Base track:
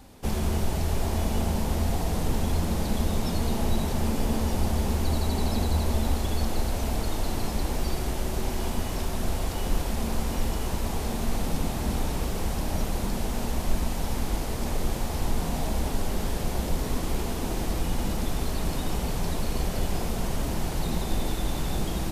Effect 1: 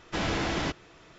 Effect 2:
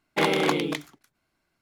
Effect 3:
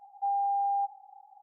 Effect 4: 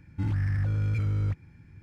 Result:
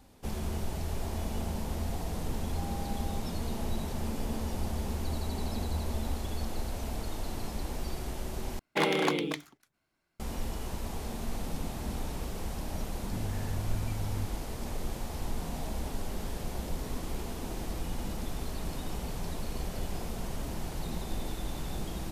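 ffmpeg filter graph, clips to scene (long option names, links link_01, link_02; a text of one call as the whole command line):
ffmpeg -i bed.wav -i cue0.wav -i cue1.wav -i cue2.wav -i cue3.wav -filter_complex "[0:a]volume=-8dB,asplit=2[link_01][link_02];[link_01]atrim=end=8.594[link_03];[2:a]atrim=end=1.61,asetpts=PTS-STARTPTS,volume=-4.5dB[link_04];[link_02]atrim=start=10.196[link_05];[3:a]atrim=end=1.42,asetpts=PTS-STARTPTS,volume=-17dB,afade=type=in:duration=0.004:curve=hsin,afade=type=out:start_time=1.416:duration=0.004:curve=hsin,adelay=2340[link_06];[4:a]atrim=end=1.82,asetpts=PTS-STARTPTS,volume=-9.5dB,afade=type=in:duration=0.004:curve=hsin,afade=type=out:start_time=1.816:duration=0.004:curve=hsin,adelay=12930[link_07];[link_03][link_04]acrossfade=duration=0.004:curve1=hsin:curve2=hsin[link_08];[link_08][link_05]acrossfade=duration=0.004:curve1=hsin:curve2=hsin[link_09];[link_09][link_06][link_07]amix=inputs=3:normalize=0" out.wav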